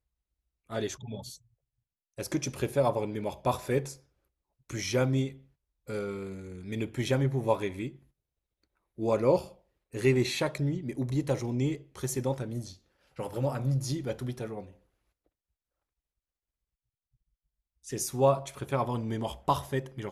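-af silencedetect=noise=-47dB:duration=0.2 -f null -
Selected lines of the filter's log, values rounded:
silence_start: 0.00
silence_end: 0.70 | silence_duration: 0.70
silence_start: 1.37
silence_end: 2.18 | silence_duration: 0.81
silence_start: 3.96
silence_end: 4.70 | silence_duration: 0.74
silence_start: 5.41
silence_end: 5.88 | silence_duration: 0.47
silence_start: 7.97
silence_end: 8.98 | silence_duration: 1.02
silence_start: 9.52
silence_end: 9.94 | silence_duration: 0.41
silence_start: 12.75
silence_end: 13.17 | silence_duration: 0.42
silence_start: 14.71
silence_end: 17.84 | silence_duration: 3.13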